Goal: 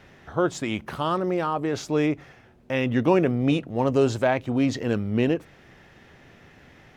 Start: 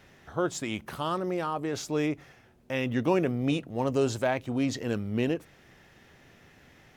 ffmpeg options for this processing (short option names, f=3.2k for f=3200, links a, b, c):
-af "highshelf=f=5.9k:g=-10.5,volume=5.5dB"